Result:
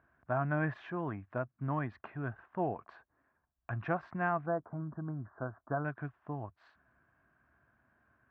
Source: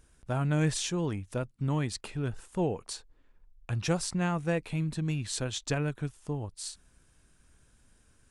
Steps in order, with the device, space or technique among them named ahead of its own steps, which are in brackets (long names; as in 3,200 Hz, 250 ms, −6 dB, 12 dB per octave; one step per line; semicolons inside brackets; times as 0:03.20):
bass cabinet (loudspeaker in its box 76–2,000 Hz, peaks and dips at 89 Hz −7 dB, 170 Hz −5 dB, 470 Hz −7 dB, 680 Hz +10 dB, 1,100 Hz +8 dB, 1,600 Hz +8 dB)
0:04.46–0:05.85: elliptic low-pass filter 1,400 Hz, stop band 50 dB
level −4.5 dB